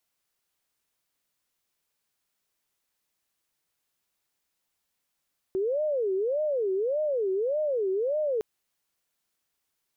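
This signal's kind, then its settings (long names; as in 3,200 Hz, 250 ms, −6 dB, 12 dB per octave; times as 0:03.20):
siren wail 376–615 Hz 1.7 per second sine −24 dBFS 2.86 s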